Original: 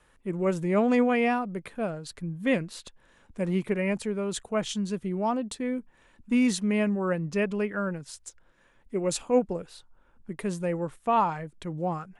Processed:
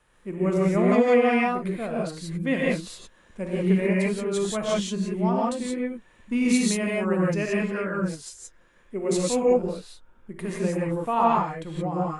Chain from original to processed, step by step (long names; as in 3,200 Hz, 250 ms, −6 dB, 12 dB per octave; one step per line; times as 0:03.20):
0:06.46–0:07.57: high-shelf EQ 7,600 Hz +8 dB
reverb whose tail is shaped and stops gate 200 ms rising, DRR −4.5 dB
level −2.5 dB